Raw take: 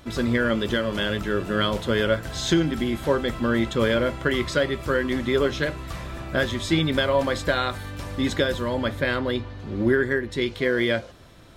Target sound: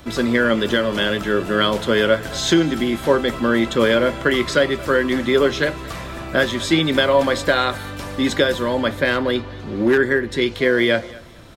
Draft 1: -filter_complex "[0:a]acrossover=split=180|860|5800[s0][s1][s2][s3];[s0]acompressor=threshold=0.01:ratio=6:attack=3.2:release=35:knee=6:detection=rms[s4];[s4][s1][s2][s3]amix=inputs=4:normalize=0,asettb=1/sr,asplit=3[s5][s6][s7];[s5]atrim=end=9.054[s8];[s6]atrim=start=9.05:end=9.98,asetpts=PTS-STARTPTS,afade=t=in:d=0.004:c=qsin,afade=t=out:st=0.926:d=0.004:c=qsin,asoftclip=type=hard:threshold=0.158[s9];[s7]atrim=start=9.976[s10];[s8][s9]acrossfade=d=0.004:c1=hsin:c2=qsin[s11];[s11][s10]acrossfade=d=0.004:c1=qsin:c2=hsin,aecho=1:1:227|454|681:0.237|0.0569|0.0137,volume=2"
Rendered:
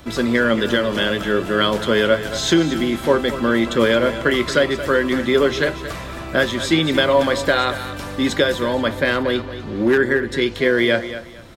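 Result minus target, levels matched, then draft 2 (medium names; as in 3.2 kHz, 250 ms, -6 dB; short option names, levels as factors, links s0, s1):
echo-to-direct +5.5 dB
-filter_complex "[0:a]acrossover=split=180|860|5800[s0][s1][s2][s3];[s0]acompressor=threshold=0.01:ratio=6:attack=3.2:release=35:knee=6:detection=rms[s4];[s4][s1][s2][s3]amix=inputs=4:normalize=0,asettb=1/sr,asplit=3[s5][s6][s7];[s5]atrim=end=9.054[s8];[s6]atrim=start=9.05:end=9.98,asetpts=PTS-STARTPTS,afade=t=in:d=0.004:c=qsin,afade=t=out:st=0.926:d=0.004:c=qsin,asoftclip=type=hard:threshold=0.158[s9];[s7]atrim=start=9.976[s10];[s8][s9]acrossfade=d=0.004:c1=hsin:c2=qsin[s11];[s11][s10]acrossfade=d=0.004:c1=qsin:c2=hsin,aecho=1:1:227|454:0.0841|0.0202,volume=2"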